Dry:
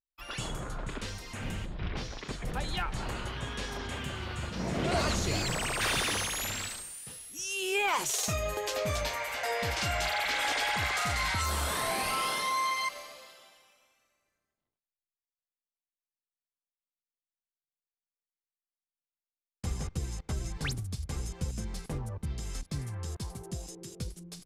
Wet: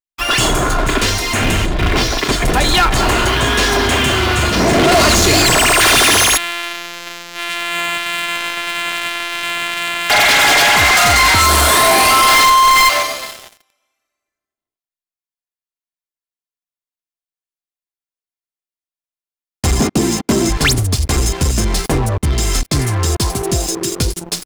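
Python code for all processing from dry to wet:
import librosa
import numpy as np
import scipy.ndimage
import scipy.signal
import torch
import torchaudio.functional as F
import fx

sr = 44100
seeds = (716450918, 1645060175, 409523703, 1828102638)

y = fx.chain(x, sr, fx.sample_sort(block=256),
    fx.bandpass_q(hz=2700.0, q=1.1),
    fx.echo_single(ms=565, db=-20.5), at=(6.37, 10.1))
y = fx.chain(y, sr, fx.halfwave_hold(),
    fx.weighting(curve='A'), at=(12.28, 13.03))
y = fx.chain(y, sr, fx.highpass(hz=170.0, slope=12),
    fx.peak_eq(hz=230.0, db=14.5, octaves=1.1), at=(19.8, 20.49))
y = fx.low_shelf(y, sr, hz=130.0, db=-7.5)
y = y + 0.43 * np.pad(y, (int(2.9 * sr / 1000.0), 0))[:len(y)]
y = fx.leveller(y, sr, passes=5)
y = y * librosa.db_to_amplitude(7.5)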